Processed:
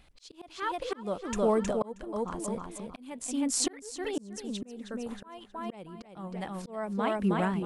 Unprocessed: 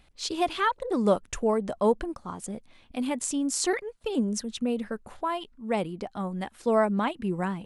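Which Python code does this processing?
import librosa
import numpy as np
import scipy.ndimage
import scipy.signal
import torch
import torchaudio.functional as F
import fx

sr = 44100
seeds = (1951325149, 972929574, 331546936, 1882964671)

y = fx.echo_feedback(x, sr, ms=316, feedback_pct=34, wet_db=-6)
y = fx.auto_swell(y, sr, attack_ms=630.0)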